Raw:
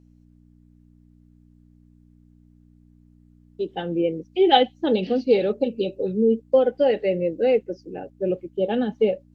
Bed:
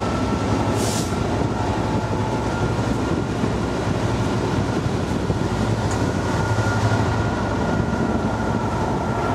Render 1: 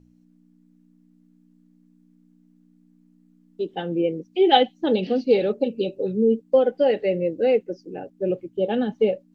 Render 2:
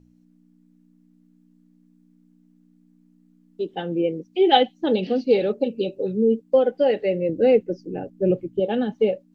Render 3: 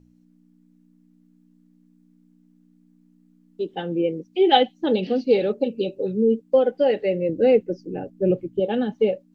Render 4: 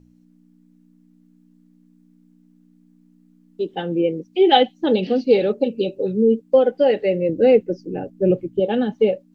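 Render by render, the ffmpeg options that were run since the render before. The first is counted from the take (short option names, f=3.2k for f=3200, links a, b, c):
-af "bandreject=f=60:t=h:w=4,bandreject=f=120:t=h:w=4"
-filter_complex "[0:a]asettb=1/sr,asplit=3[a][b][c];[a]atrim=end=7.294[d];[b]atrim=start=7.29:end=8.6,asetpts=PTS-STARTPTS,afade=t=in:d=0.004:c=qsin,afade=t=out:st=1.306:d=0.004:c=qsin,lowshelf=f=270:g=11[e];[c]atrim=start=8.596[f];[d][e]acrossfade=d=0.004:c1=hsin:c2=qsin[g];[g][f]acrossfade=d=0.004:c1=qsin:c2=hsin"
-af "bandreject=f=670:w=19"
-af "volume=3dB,alimiter=limit=-3dB:level=0:latency=1"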